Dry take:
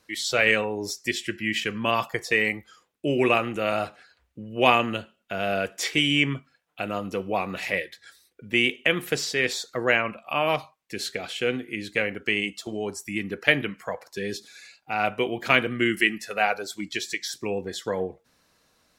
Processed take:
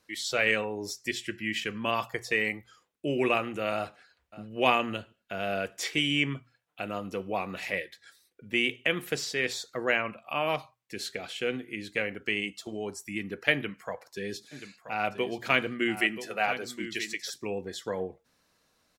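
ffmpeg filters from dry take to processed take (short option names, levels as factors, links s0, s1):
-filter_complex "[0:a]asplit=2[s0][s1];[s1]afade=t=in:st=3.74:d=0.01,afade=t=out:st=4.54:d=0.01,aecho=0:1:580|1160:0.133352|0.033338[s2];[s0][s2]amix=inputs=2:normalize=0,asplit=3[s3][s4][s5];[s3]afade=t=out:st=14.51:d=0.02[s6];[s4]aecho=1:1:980:0.282,afade=t=in:st=14.51:d=0.02,afade=t=out:st=17.29:d=0.02[s7];[s5]afade=t=in:st=17.29:d=0.02[s8];[s6][s7][s8]amix=inputs=3:normalize=0,bandreject=f=60:t=h:w=6,bandreject=f=120:t=h:w=6,volume=0.562"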